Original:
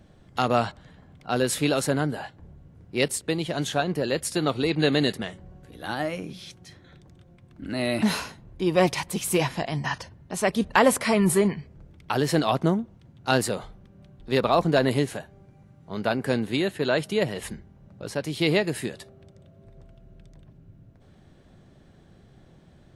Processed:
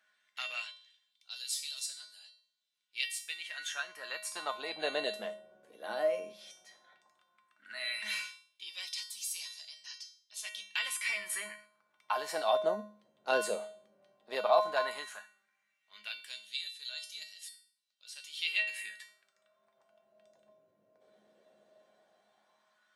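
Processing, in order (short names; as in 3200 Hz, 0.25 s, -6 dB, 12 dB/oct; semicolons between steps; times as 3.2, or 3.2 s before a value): resonator 210 Hz, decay 0.47 s, harmonics odd, mix 90%; LFO high-pass sine 0.13 Hz 490–4600 Hz; gain +6 dB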